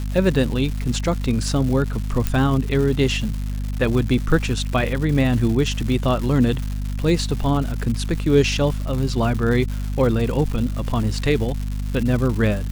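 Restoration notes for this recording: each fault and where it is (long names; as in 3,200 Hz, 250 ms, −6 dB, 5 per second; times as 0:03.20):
surface crackle 310 per second −27 dBFS
mains hum 50 Hz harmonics 5 −25 dBFS
0:02.27: click −7 dBFS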